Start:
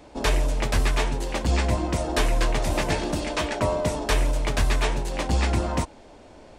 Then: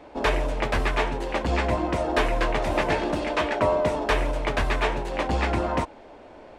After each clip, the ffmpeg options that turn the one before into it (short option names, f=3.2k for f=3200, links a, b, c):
-af "bass=f=250:g=-8,treble=f=4k:g=-15,volume=3.5dB"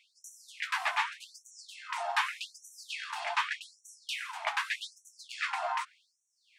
-af "afftfilt=real='re*gte(b*sr/1024,640*pow(5700/640,0.5+0.5*sin(2*PI*0.84*pts/sr)))':imag='im*gte(b*sr/1024,640*pow(5700/640,0.5+0.5*sin(2*PI*0.84*pts/sr)))':win_size=1024:overlap=0.75,volume=-2.5dB"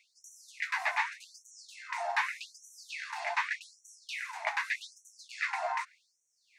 -filter_complex "[0:a]equalizer=f=500:t=o:w=0.33:g=9,equalizer=f=1.25k:t=o:w=0.33:g=-7,equalizer=f=2k:t=o:w=0.33:g=5,equalizer=f=3.15k:t=o:w=0.33:g=-10,equalizer=f=6.3k:t=o:w=0.33:g=4,acrossover=split=4800[a][b];[b]acompressor=threshold=-52dB:ratio=4:attack=1:release=60[c];[a][c]amix=inputs=2:normalize=0"